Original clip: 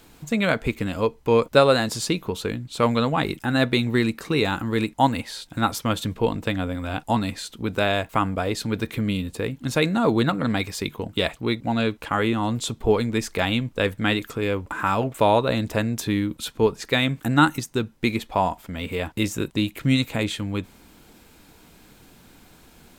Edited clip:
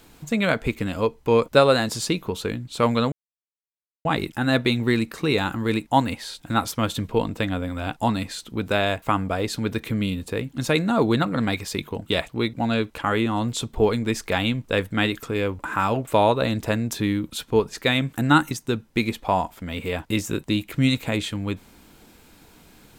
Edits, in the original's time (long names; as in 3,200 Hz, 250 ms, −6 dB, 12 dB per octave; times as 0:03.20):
0:03.12: splice in silence 0.93 s